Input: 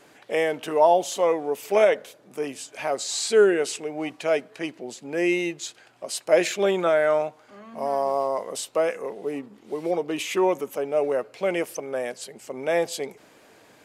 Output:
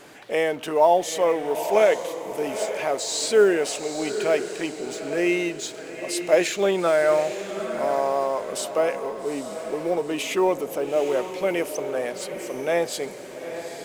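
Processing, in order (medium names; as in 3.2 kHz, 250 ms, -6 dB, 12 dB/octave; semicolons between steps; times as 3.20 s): companding laws mixed up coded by mu; echo that smears into a reverb 848 ms, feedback 42%, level -9.5 dB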